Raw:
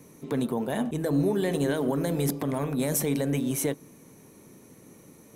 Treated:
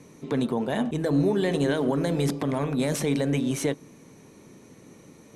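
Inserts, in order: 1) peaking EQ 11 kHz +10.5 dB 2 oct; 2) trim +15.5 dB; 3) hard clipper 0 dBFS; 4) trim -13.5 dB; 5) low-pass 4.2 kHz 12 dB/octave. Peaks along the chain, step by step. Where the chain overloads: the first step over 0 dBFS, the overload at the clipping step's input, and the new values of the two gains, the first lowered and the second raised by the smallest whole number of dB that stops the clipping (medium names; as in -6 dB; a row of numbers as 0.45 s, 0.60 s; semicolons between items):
-6.5 dBFS, +9.0 dBFS, 0.0 dBFS, -13.5 dBFS, -13.5 dBFS; step 2, 9.0 dB; step 2 +6.5 dB, step 4 -4.5 dB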